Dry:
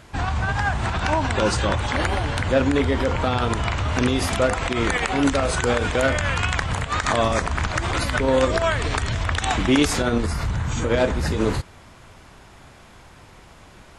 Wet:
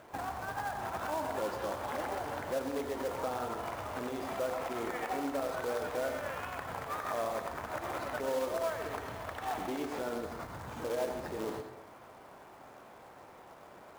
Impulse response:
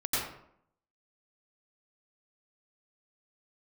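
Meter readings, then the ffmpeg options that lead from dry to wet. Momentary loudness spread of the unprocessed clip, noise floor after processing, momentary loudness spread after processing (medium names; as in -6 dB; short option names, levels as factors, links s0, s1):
5 LU, -54 dBFS, 18 LU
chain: -filter_complex "[0:a]acompressor=threshold=0.0501:ratio=8,asoftclip=type=tanh:threshold=0.075,bandpass=f=630:t=q:w=1:csg=0,acrusher=bits=3:mode=log:mix=0:aa=0.000001,asplit=2[s0][s1];[1:a]atrim=start_sample=2205,lowshelf=f=150:g=-9.5[s2];[s1][s2]afir=irnorm=-1:irlink=0,volume=0.282[s3];[s0][s3]amix=inputs=2:normalize=0,volume=0.708"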